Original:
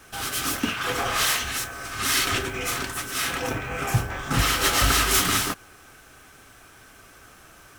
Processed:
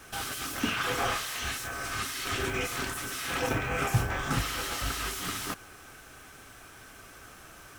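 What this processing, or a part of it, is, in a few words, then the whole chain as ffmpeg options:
de-esser from a sidechain: -filter_complex "[0:a]asplit=2[link_01][link_02];[link_02]highpass=4400,apad=whole_len=343161[link_03];[link_01][link_03]sidechaincompress=threshold=-34dB:ratio=16:attack=0.6:release=37"

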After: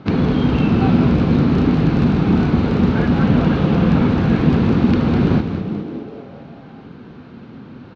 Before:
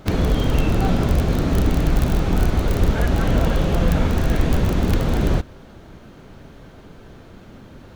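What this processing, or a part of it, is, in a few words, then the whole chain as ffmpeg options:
frequency-shifting delay pedal into a guitar cabinet: -filter_complex "[0:a]asplit=8[link_01][link_02][link_03][link_04][link_05][link_06][link_07][link_08];[link_02]adelay=204,afreqshift=-120,volume=-8dB[link_09];[link_03]adelay=408,afreqshift=-240,volume=-12.6dB[link_10];[link_04]adelay=612,afreqshift=-360,volume=-17.2dB[link_11];[link_05]adelay=816,afreqshift=-480,volume=-21.7dB[link_12];[link_06]adelay=1020,afreqshift=-600,volume=-26.3dB[link_13];[link_07]adelay=1224,afreqshift=-720,volume=-30.9dB[link_14];[link_08]adelay=1428,afreqshift=-840,volume=-35.5dB[link_15];[link_01][link_09][link_10][link_11][link_12][link_13][link_14][link_15]amix=inputs=8:normalize=0,highpass=110,equalizer=frequency=150:width_type=q:width=4:gain=5,equalizer=frequency=240:width_type=q:width=4:gain=7,equalizer=frequency=610:width_type=q:width=4:gain=-7,equalizer=frequency=1900:width_type=q:width=4:gain=-4,equalizer=frequency=3300:width_type=q:width=4:gain=-5,lowpass=frequency=4100:width=0.5412,lowpass=frequency=4100:width=1.3066,volume=3.5dB"

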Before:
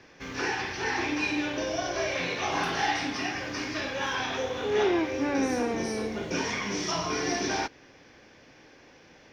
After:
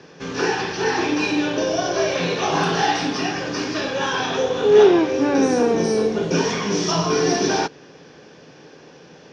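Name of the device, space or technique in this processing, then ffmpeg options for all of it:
car door speaker: -af "highpass=87,equalizer=frequency=96:width_type=q:width=4:gain=-7,equalizer=frequency=160:width_type=q:width=4:gain=10,equalizer=frequency=430:width_type=q:width=4:gain=7,equalizer=frequency=2100:width_type=q:width=4:gain=-9,lowpass=frequency=8700:width=0.5412,lowpass=frequency=8700:width=1.3066,volume=8dB"

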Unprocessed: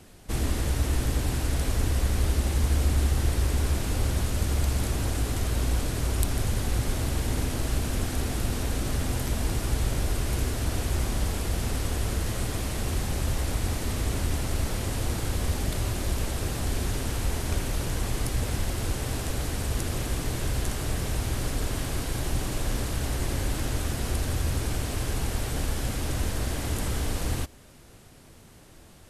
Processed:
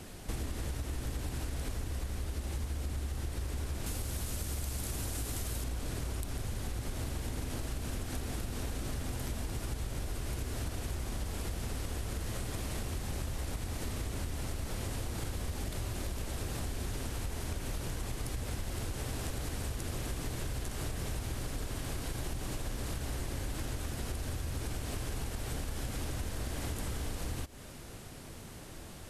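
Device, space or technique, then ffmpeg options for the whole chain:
serial compression, peaks first: -filter_complex "[0:a]asettb=1/sr,asplit=3[link_01][link_02][link_03];[link_01]atrim=end=3.864[link_04];[link_02]atrim=start=3.86:end=5.64,asetpts=PTS-STARTPTS,afade=type=in:duration=0.004:curve=qsin,afade=type=out:start_time=1.776:duration=0.004:curve=qsin,aemphasis=mode=production:type=cd[link_05];[link_03]atrim=start=5.636[link_06];[link_04][link_05]acrossfade=duration=0.004:curve1=hsin:curve2=qsin[link_07];[link_07][link_06]acrossfade=duration=0.004:curve1=qsin:curve2=hsin,acompressor=threshold=-32dB:ratio=6,acompressor=threshold=-41dB:ratio=2,volume=4dB"

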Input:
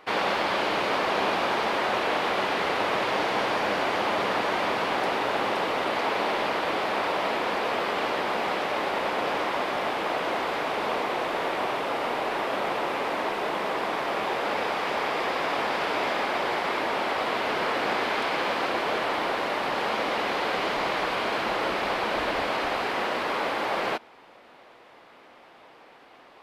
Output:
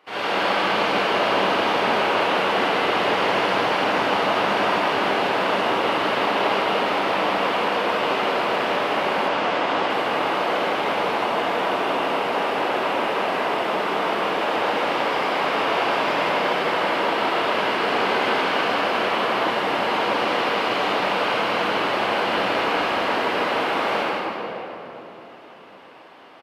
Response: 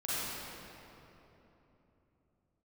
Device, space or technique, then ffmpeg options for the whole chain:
PA in a hall: -filter_complex "[0:a]highpass=110,equalizer=frequency=2900:width_type=o:width=0.21:gain=5.5,aecho=1:1:160:0.447[link_01];[1:a]atrim=start_sample=2205[link_02];[link_01][link_02]afir=irnorm=-1:irlink=0,asettb=1/sr,asplit=3[link_03][link_04][link_05];[link_03]atrim=end=9.284[link_06];[link_04]atrim=start=9.28:end=9.9,asetpts=PTS-STARTPTS,afade=type=in:duration=0.004:curve=qsin,afade=type=out:start_time=0.616:duration=0.004:curve=qsin,lowpass=8100[link_07];[link_05]atrim=start=9.896[link_08];[link_06][link_07]acrossfade=duration=0.004:curve1=hsin:curve2=qsin[link_09];[link_09][link_08]acrossfade=duration=0.004:curve1=qsin:curve2=hsin,volume=-2.5dB"

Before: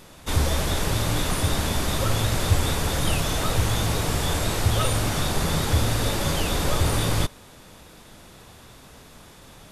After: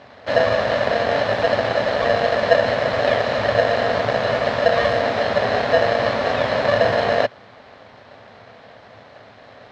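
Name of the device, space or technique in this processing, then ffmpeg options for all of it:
ring modulator pedal into a guitar cabinet: -af "aeval=exprs='val(0)*sgn(sin(2*PI*580*n/s))':channel_layout=same,highpass=81,equalizer=frequency=110:width_type=q:width=4:gain=9,equalizer=frequency=160:width_type=q:width=4:gain=-4,equalizer=frequency=230:width_type=q:width=4:gain=5,equalizer=frequency=340:width_type=q:width=4:gain=-8,equalizer=frequency=660:width_type=q:width=4:gain=3,equalizer=frequency=2900:width_type=q:width=4:gain=-7,lowpass=frequency=3800:width=0.5412,lowpass=frequency=3800:width=1.3066,volume=3.5dB"

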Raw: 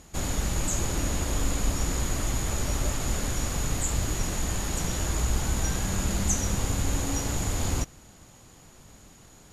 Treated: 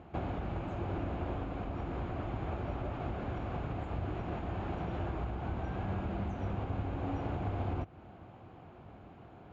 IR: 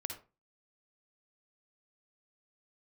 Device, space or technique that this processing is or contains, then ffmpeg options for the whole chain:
bass amplifier: -af "acompressor=threshold=-31dB:ratio=5,highpass=66,equalizer=frequency=95:width_type=q:width=4:gain=5,equalizer=frequency=350:width_type=q:width=4:gain=5,equalizer=frequency=720:width_type=q:width=4:gain=8,equalizer=frequency=1900:width_type=q:width=4:gain=-8,lowpass=frequency=2400:width=0.5412,lowpass=frequency=2400:width=1.3066"

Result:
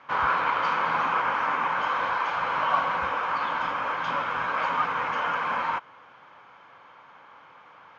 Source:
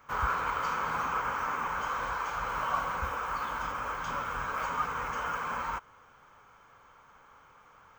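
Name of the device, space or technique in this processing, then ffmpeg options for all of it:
kitchen radio: -af "highpass=200,equalizer=frequency=220:width_type=q:width=4:gain=-4,equalizer=frequency=430:width_type=q:width=4:gain=-6,equalizer=frequency=1300:width_type=q:width=4:gain=-5,lowpass=frequency=4200:width=0.5412,lowpass=frequency=4200:width=1.3066,volume=9dB"

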